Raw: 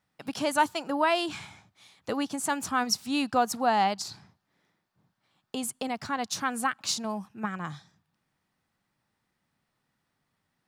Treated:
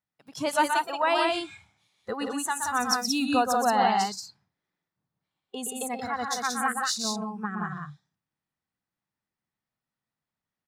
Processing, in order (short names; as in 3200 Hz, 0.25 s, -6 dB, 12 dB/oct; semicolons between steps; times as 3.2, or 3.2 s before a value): loudspeakers at several distances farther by 42 m -5 dB, 61 m -3 dB; spectral noise reduction 15 dB